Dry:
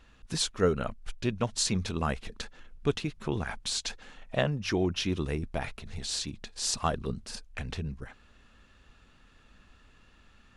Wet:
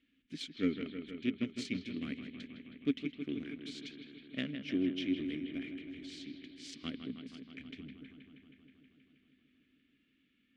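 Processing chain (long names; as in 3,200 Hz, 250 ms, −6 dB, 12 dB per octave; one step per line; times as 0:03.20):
harmonic generator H 7 −22 dB, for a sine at −11.5 dBFS
formant filter i
bucket-brigade delay 159 ms, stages 4,096, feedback 78%, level −9 dB
level +6.5 dB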